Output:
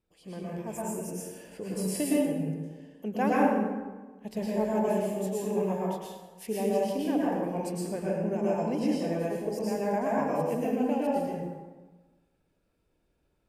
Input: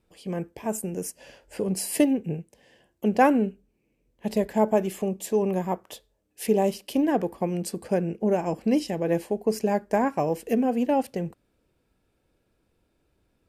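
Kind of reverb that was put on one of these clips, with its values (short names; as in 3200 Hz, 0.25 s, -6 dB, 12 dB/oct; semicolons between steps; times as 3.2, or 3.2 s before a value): plate-style reverb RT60 1.3 s, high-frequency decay 0.6×, pre-delay 95 ms, DRR -6.5 dB; gain -11 dB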